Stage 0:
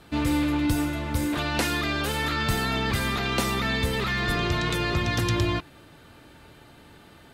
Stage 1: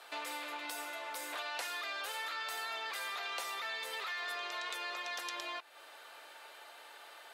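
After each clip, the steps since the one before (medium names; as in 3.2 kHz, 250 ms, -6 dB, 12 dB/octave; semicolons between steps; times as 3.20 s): high-pass 580 Hz 24 dB/octave; compression 3:1, threshold -43 dBFS, peak gain reduction 14.5 dB; trim +1 dB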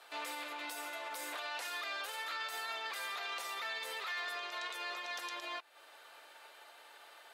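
peak limiter -34.5 dBFS, peak gain reduction 8.5 dB; upward expansion 1.5:1, over -57 dBFS; trim +3 dB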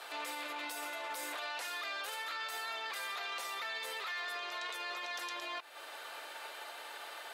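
peak limiter -42.5 dBFS, peak gain reduction 11 dB; trim +10 dB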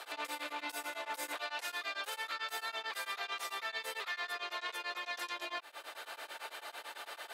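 tremolo of two beating tones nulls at 9 Hz; trim +3 dB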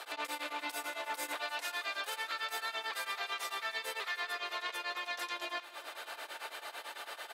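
feedback delay 303 ms, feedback 59%, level -16.5 dB; trim +1.5 dB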